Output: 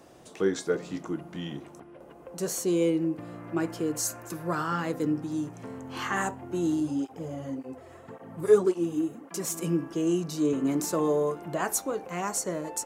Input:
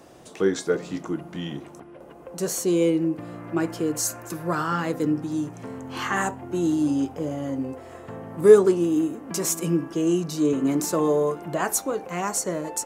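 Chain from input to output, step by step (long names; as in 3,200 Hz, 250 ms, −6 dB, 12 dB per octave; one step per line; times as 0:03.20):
0:06.80–0:09.54: through-zero flanger with one copy inverted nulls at 1.8 Hz, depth 5 ms
level −4 dB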